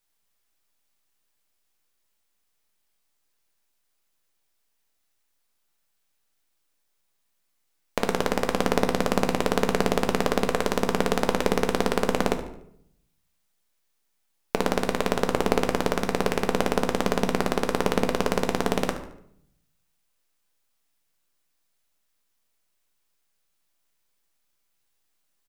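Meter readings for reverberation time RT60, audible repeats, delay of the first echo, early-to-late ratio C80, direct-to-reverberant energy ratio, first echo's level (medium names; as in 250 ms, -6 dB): 0.70 s, 2, 73 ms, 13.0 dB, 6.0 dB, -14.0 dB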